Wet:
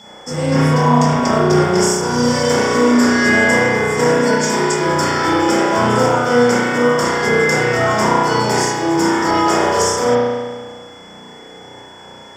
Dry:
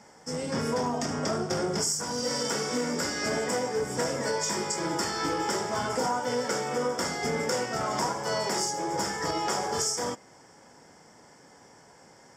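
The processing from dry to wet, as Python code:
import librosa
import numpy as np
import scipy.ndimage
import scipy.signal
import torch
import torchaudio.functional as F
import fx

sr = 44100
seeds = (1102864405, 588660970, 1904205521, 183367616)

y = fx.quant_companded(x, sr, bits=8)
y = fx.rev_spring(y, sr, rt60_s=1.5, pass_ms=(33,), chirp_ms=80, drr_db=-7.5)
y = y + 10.0 ** (-49.0 / 20.0) * np.sin(2.0 * np.pi * 3400.0 * np.arange(len(y)) / sr)
y = y * librosa.db_to_amplitude(7.5)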